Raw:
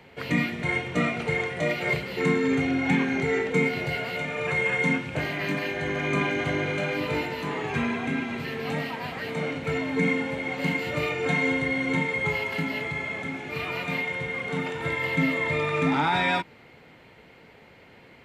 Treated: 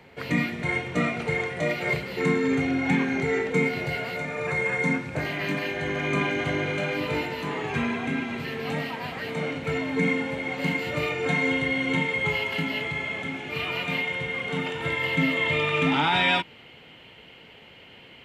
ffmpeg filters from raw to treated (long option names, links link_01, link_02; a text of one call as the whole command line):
ffmpeg -i in.wav -af "asetnsamples=nb_out_samples=441:pad=0,asendcmd='4.14 equalizer g -9.5;5.25 equalizer g 1.5;11.51 equalizer g 8;15.37 equalizer g 15',equalizer=frequency=3000:width_type=o:width=0.38:gain=-2" out.wav